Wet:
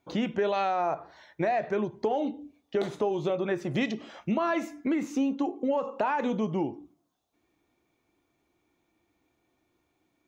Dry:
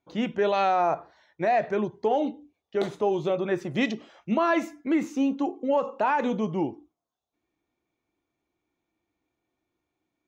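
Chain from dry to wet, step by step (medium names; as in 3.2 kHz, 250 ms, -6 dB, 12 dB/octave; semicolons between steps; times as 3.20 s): compression 3:1, threshold -36 dBFS, peak gain reduction 12.5 dB; on a send: reverberation RT60 0.50 s, pre-delay 7 ms, DRR 20.5 dB; on the sum: trim +7.5 dB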